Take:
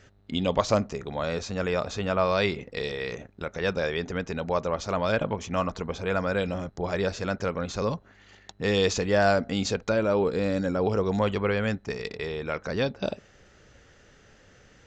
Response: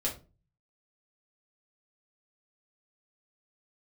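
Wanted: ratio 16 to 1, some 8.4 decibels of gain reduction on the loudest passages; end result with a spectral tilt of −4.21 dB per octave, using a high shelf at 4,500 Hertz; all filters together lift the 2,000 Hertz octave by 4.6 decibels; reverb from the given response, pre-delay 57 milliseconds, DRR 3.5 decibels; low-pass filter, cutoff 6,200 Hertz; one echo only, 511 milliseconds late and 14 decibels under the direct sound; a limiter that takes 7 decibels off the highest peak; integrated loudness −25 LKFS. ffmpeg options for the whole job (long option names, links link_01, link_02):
-filter_complex "[0:a]lowpass=6200,equalizer=frequency=2000:width_type=o:gain=5.5,highshelf=frequency=4500:gain=3.5,acompressor=threshold=-24dB:ratio=16,alimiter=limit=-20.5dB:level=0:latency=1,aecho=1:1:511:0.2,asplit=2[link_01][link_02];[1:a]atrim=start_sample=2205,adelay=57[link_03];[link_02][link_03]afir=irnorm=-1:irlink=0,volume=-8dB[link_04];[link_01][link_04]amix=inputs=2:normalize=0,volume=4.5dB"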